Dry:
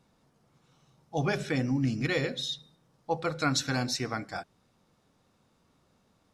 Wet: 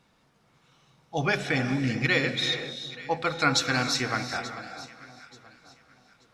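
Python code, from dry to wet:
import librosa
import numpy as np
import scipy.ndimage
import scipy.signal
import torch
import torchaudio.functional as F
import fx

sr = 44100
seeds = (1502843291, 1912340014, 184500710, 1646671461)

y = fx.peak_eq(x, sr, hz=2300.0, db=8.5, octaves=2.3)
y = fx.echo_alternate(y, sr, ms=441, hz=1300.0, feedback_pct=52, wet_db=-12.0)
y = fx.rev_gated(y, sr, seeds[0], gate_ms=430, shape='rising', drr_db=8.5)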